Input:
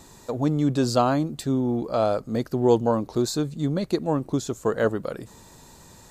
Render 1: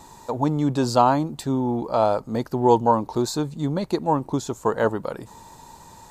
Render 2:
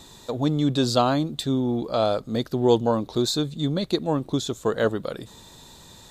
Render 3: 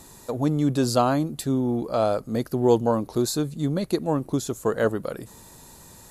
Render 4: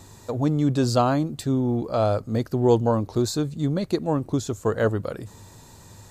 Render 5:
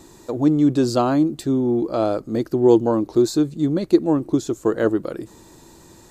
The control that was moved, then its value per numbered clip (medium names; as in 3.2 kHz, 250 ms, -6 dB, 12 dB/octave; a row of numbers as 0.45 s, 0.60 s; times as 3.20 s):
peaking EQ, frequency: 910 Hz, 3.6 kHz, 11 kHz, 99 Hz, 330 Hz